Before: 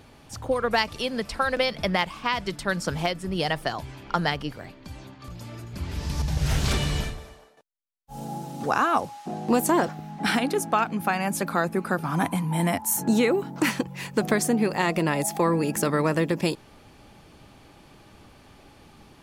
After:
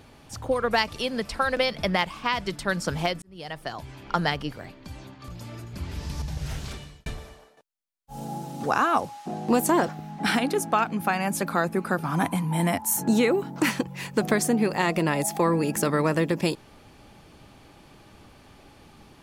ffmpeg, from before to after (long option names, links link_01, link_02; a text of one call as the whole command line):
ffmpeg -i in.wav -filter_complex "[0:a]asplit=3[link_01][link_02][link_03];[link_01]atrim=end=3.22,asetpts=PTS-STARTPTS,afade=type=out:start_time=3.216:duration=0.004:curve=hsin[link_04];[link_02]atrim=start=3.22:end=7.06,asetpts=PTS-STARTPTS,afade=type=in:duration=0.88,afade=type=out:start_time=2.36:duration=1.48[link_05];[link_03]atrim=start=7.06,asetpts=PTS-STARTPTS,afade=type=in:duration=0.004:curve=hsin[link_06];[link_04][link_05][link_06]concat=n=3:v=0:a=1" out.wav